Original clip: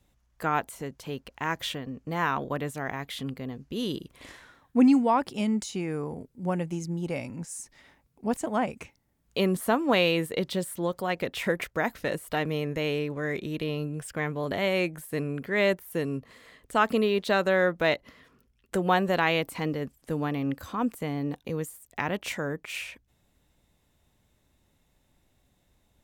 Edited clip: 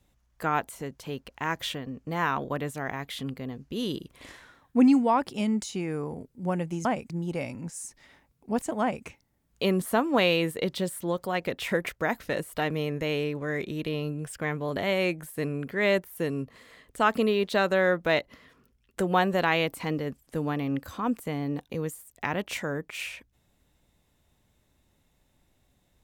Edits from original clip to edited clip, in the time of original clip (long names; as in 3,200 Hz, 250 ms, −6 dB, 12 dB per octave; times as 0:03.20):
0:08.56–0:08.81: duplicate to 0:06.85